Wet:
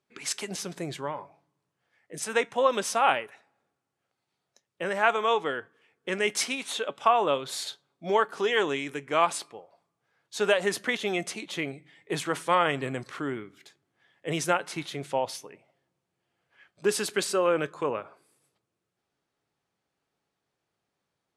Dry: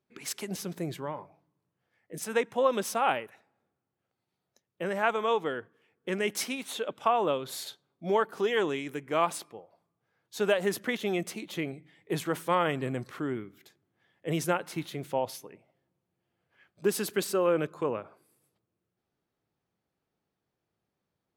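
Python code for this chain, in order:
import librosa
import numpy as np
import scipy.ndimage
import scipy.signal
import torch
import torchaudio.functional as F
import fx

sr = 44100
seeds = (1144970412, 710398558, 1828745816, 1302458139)

y = scipy.signal.sosfilt(scipy.signal.butter(4, 10000.0, 'lowpass', fs=sr, output='sos'), x)
y = fx.low_shelf(y, sr, hz=470.0, db=-8.5)
y = fx.comb_fb(y, sr, f0_hz=140.0, decay_s=0.17, harmonics='all', damping=0.0, mix_pct=40)
y = F.gain(torch.from_numpy(y), 8.5).numpy()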